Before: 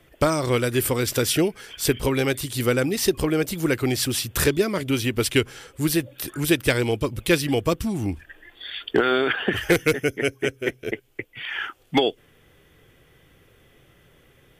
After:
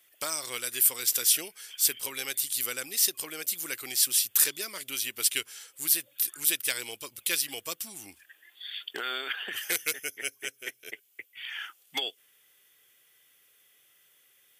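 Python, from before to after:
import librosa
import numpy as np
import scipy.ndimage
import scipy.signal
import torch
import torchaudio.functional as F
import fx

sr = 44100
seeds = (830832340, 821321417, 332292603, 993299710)

y = np.diff(x, prepend=0.0)
y = y * librosa.db_to_amplitude(2.5)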